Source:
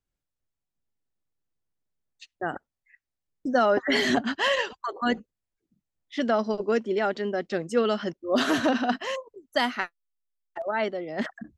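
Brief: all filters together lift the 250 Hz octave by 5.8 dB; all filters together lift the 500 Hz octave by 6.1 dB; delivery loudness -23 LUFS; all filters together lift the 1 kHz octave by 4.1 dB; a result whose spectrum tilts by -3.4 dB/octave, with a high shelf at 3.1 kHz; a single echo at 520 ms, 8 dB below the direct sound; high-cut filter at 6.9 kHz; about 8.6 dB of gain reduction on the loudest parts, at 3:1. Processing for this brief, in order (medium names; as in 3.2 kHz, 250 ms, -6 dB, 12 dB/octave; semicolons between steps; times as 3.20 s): low-pass 6.9 kHz; peaking EQ 250 Hz +5 dB; peaking EQ 500 Hz +5.5 dB; peaking EQ 1 kHz +3.5 dB; treble shelf 3.1 kHz -4 dB; compression 3:1, threshold -24 dBFS; delay 520 ms -8 dB; trim +5 dB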